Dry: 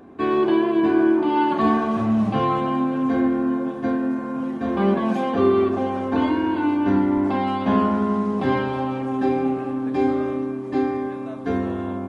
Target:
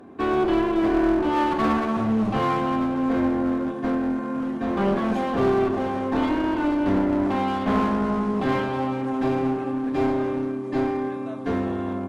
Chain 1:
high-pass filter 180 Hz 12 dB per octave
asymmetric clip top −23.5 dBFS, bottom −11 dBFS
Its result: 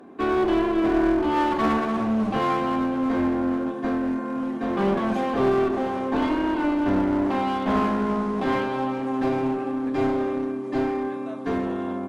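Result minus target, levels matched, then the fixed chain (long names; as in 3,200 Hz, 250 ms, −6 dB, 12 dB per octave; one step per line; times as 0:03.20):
125 Hz band −2.5 dB
high-pass filter 65 Hz 12 dB per octave
asymmetric clip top −23.5 dBFS, bottom −11 dBFS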